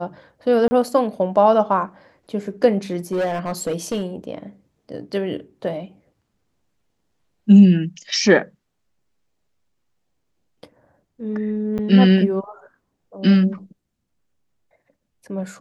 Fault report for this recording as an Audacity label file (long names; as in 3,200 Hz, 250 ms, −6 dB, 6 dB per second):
0.680000	0.710000	drop-out 30 ms
3.120000	4.040000	clipping −18 dBFS
11.780000	11.790000	drop-out 8.8 ms